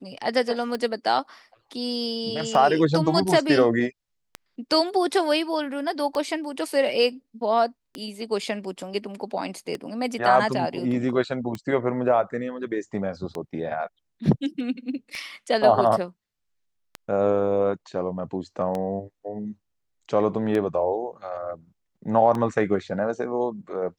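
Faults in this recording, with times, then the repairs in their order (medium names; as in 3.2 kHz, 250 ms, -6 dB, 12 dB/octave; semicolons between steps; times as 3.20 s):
tick 33 1/3 rpm -16 dBFS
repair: de-click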